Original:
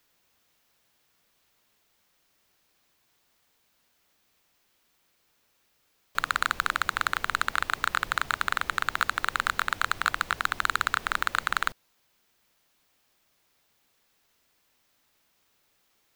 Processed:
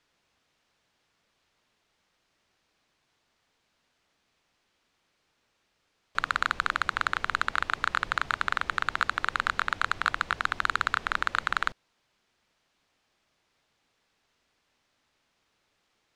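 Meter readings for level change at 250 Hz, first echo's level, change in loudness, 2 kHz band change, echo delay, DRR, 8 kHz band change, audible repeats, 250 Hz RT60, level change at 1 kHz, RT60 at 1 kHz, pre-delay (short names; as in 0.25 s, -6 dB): 0.0 dB, none, -1.0 dB, -0.5 dB, none, none, -7.0 dB, none, none, -0.5 dB, none, none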